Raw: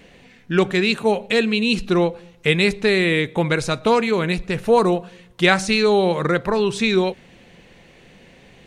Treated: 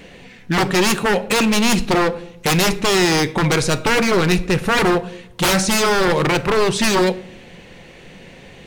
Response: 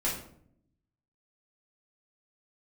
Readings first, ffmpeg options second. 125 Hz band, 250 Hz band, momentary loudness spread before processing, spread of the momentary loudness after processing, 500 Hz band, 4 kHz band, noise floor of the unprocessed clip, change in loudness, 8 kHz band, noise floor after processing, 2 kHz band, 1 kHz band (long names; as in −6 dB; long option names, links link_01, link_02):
+3.0 dB, +2.0 dB, 5 LU, 5 LU, 0.0 dB, +4.0 dB, −50 dBFS, +2.0 dB, +12.5 dB, −42 dBFS, +2.0 dB, +4.0 dB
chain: -filter_complex "[0:a]aeval=exprs='0.133*(abs(mod(val(0)/0.133+3,4)-2)-1)':channel_layout=same,asplit=2[link_01][link_02];[1:a]atrim=start_sample=2205[link_03];[link_02][link_03]afir=irnorm=-1:irlink=0,volume=-19.5dB[link_04];[link_01][link_04]amix=inputs=2:normalize=0,volume=6dB"